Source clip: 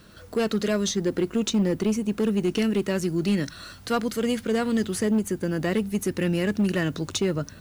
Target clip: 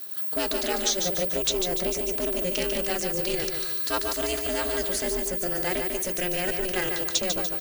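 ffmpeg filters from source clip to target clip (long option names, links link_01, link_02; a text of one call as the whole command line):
ffmpeg -i in.wav -filter_complex "[0:a]acrossover=split=6900[link_01][link_02];[link_02]acompressor=threshold=-49dB:ratio=4:attack=1:release=60[link_03];[link_01][link_03]amix=inputs=2:normalize=0,aeval=exprs='val(0)*sin(2*PI*180*n/s)':channel_layout=same,lowshelf=frequency=130:gain=9.5,bandreject=frequency=50:width_type=h:width=6,bandreject=frequency=100:width_type=h:width=6,bandreject=frequency=150:width_type=h:width=6,bandreject=frequency=200:width_type=h:width=6,asplit=2[link_04][link_05];[link_05]aeval=exprs='clip(val(0),-1,0.106)':channel_layout=same,volume=-10.5dB[link_06];[link_04][link_06]amix=inputs=2:normalize=0,aemphasis=mode=production:type=riaa,asplit=2[link_07][link_08];[link_08]aecho=0:1:146|292|438|584|730:0.531|0.234|0.103|0.0452|0.0199[link_09];[link_07][link_09]amix=inputs=2:normalize=0,volume=-2dB" out.wav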